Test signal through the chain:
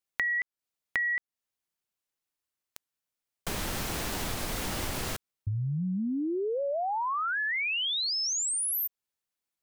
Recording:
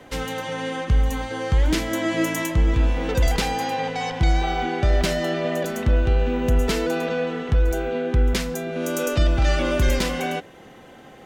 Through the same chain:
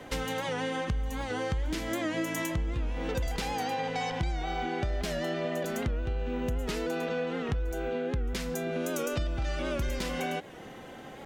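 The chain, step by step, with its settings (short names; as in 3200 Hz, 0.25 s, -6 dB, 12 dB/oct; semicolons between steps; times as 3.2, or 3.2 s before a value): compressor 6:1, threshold -29 dBFS; record warp 78 rpm, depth 100 cents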